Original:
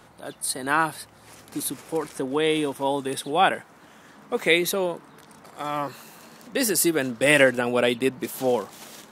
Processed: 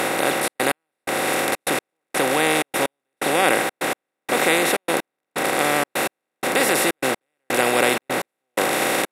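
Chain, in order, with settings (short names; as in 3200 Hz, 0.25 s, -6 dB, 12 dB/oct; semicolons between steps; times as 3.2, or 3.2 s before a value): per-bin compression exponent 0.2; step gate "xxxx.x..." 126 bpm -60 dB; gain -6 dB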